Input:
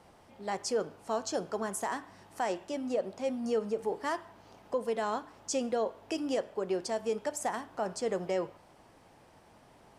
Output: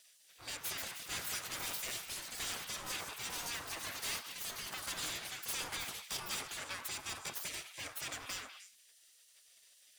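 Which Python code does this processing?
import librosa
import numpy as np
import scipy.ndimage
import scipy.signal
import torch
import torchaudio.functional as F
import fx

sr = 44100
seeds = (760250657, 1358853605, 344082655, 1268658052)

p1 = fx.lower_of_two(x, sr, delay_ms=0.83)
p2 = fx.spec_gate(p1, sr, threshold_db=-20, keep='weak')
p3 = fx.high_shelf(p2, sr, hz=4300.0, db=8.0)
p4 = 10.0 ** (-36.5 / 20.0) * (np.abs((p3 / 10.0 ** (-36.5 / 20.0) + 3.0) % 4.0 - 2.0) - 1.0)
p5 = p4 + fx.echo_stepped(p4, sr, ms=101, hz=1100.0, octaves=1.4, feedback_pct=70, wet_db=-5.5, dry=0)
p6 = fx.echo_pitch(p5, sr, ms=298, semitones=5, count=3, db_per_echo=-3.0)
y = F.gain(torch.from_numpy(p6), 3.5).numpy()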